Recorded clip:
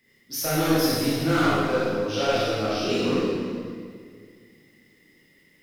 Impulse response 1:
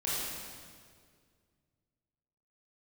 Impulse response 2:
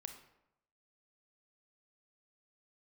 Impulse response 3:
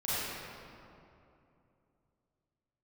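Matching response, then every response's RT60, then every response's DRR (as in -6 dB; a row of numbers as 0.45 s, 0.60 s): 1; 2.0 s, 0.85 s, 2.8 s; -8.5 dB, 6.0 dB, -12.5 dB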